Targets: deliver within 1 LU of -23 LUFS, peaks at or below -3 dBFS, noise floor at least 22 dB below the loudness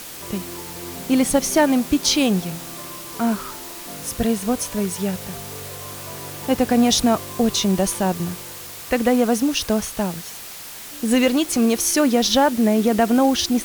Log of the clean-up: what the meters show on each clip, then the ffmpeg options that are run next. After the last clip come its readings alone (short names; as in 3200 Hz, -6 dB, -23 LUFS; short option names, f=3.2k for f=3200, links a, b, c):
noise floor -36 dBFS; noise floor target -42 dBFS; loudness -20.0 LUFS; peak -3.5 dBFS; loudness target -23.0 LUFS
-> -af "afftdn=nr=6:nf=-36"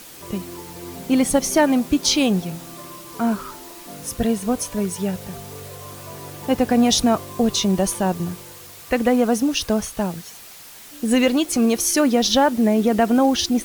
noise floor -41 dBFS; noise floor target -42 dBFS
-> -af "afftdn=nr=6:nf=-41"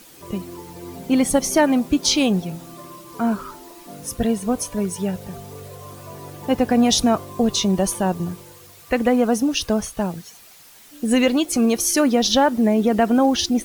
noise floor -46 dBFS; loudness -19.5 LUFS; peak -4.0 dBFS; loudness target -23.0 LUFS
-> -af "volume=-3.5dB"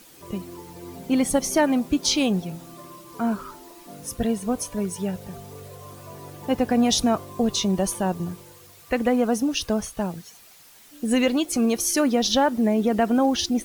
loudness -23.0 LUFS; peak -7.5 dBFS; noise floor -50 dBFS